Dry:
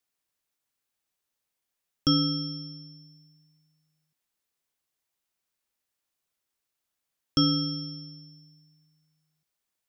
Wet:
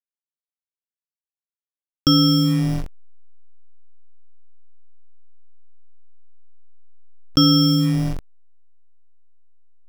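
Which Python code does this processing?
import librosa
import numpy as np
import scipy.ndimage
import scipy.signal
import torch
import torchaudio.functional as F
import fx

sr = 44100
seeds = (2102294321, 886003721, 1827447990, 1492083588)

p1 = fx.rider(x, sr, range_db=4, speed_s=2.0)
p2 = x + (p1 * librosa.db_to_amplitude(-1.0))
p3 = fx.backlash(p2, sr, play_db=-26.0)
y = fx.env_flatten(p3, sr, amount_pct=70)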